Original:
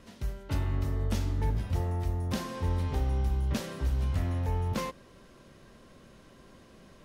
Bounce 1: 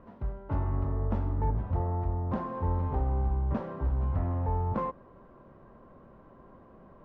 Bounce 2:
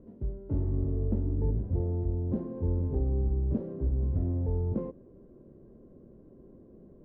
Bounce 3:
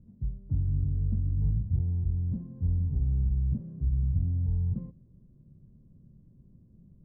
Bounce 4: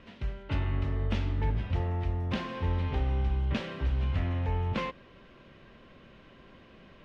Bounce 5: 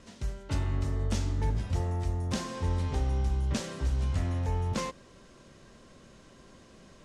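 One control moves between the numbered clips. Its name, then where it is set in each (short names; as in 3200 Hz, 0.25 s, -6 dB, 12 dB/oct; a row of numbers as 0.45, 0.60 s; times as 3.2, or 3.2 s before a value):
synth low-pass, frequency: 1000, 390, 150, 2800, 7700 Hz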